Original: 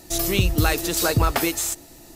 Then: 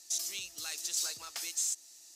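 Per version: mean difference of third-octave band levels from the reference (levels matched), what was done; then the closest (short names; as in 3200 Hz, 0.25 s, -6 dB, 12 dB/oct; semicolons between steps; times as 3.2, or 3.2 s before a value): 12.0 dB: in parallel at +1 dB: compressor, threshold -30 dBFS, peak gain reduction 15 dB; on the sum: band-pass 6200 Hz, Q 2; gain -6.5 dB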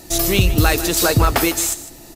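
1.5 dB: in parallel at -8 dB: hard clip -17.5 dBFS, distortion -11 dB; on the sum: echo 0.153 s -15 dB; gain +2.5 dB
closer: second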